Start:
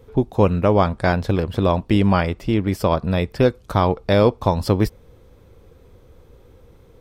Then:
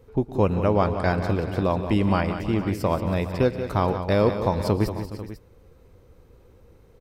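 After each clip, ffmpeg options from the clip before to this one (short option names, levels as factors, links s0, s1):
-af "bandreject=f=3400:w=9.5,aecho=1:1:114|147|181|323|417|493:0.106|0.126|0.316|0.141|0.15|0.188,volume=0.562"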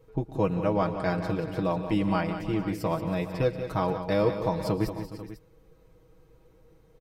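-af "aecho=1:1:6.3:0.79,volume=0.473"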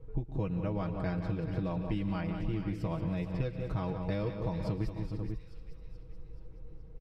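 -filter_complex "[0:a]aemphasis=mode=reproduction:type=riaa,acrossover=split=1900[s0][s1];[s0]acompressor=threshold=0.0447:ratio=6[s2];[s1]asplit=7[s3][s4][s5][s6][s7][s8][s9];[s4]adelay=428,afreqshift=60,volume=0.335[s10];[s5]adelay=856,afreqshift=120,volume=0.172[s11];[s6]adelay=1284,afreqshift=180,volume=0.0871[s12];[s7]adelay=1712,afreqshift=240,volume=0.0447[s13];[s8]adelay=2140,afreqshift=300,volume=0.0226[s14];[s9]adelay=2568,afreqshift=360,volume=0.0116[s15];[s3][s10][s11][s12][s13][s14][s15]amix=inputs=7:normalize=0[s16];[s2][s16]amix=inputs=2:normalize=0,volume=0.668"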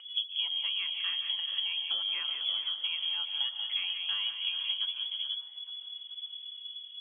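-af "lowpass=f=2900:t=q:w=0.5098,lowpass=f=2900:t=q:w=0.6013,lowpass=f=2900:t=q:w=0.9,lowpass=f=2900:t=q:w=2.563,afreqshift=-3400,acompressor=mode=upward:threshold=0.00355:ratio=2.5"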